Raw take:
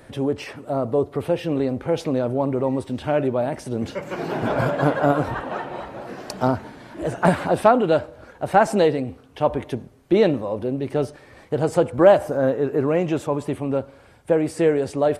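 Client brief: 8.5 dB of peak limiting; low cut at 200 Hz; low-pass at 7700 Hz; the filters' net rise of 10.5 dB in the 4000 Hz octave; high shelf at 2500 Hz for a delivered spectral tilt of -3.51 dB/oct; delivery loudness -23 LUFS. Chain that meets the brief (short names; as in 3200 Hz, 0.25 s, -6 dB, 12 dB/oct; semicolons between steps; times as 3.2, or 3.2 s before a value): HPF 200 Hz; LPF 7700 Hz; high shelf 2500 Hz +6 dB; bell 4000 Hz +8.5 dB; gain +0.5 dB; limiter -8 dBFS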